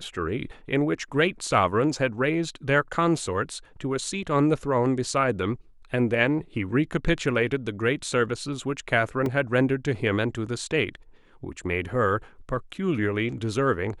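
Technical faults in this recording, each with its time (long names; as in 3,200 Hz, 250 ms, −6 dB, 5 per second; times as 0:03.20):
0:09.26: drop-out 2.1 ms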